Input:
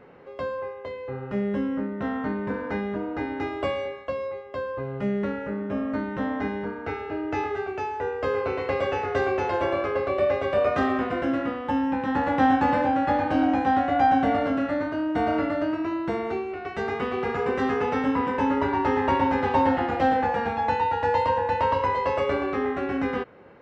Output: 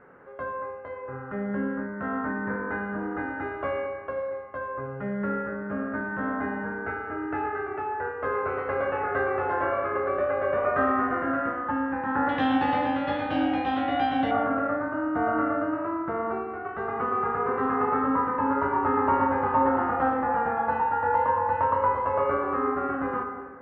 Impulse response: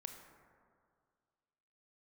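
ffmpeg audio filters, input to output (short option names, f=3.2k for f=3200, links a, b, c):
-filter_complex "[0:a]asetnsamples=n=441:p=0,asendcmd='12.29 lowpass f 3400;14.31 lowpass f 1300',lowpass=f=1.5k:t=q:w=3.3[a];[1:a]atrim=start_sample=2205,asetrate=57330,aresample=44100[b];[a][b]afir=irnorm=-1:irlink=0,volume=2dB"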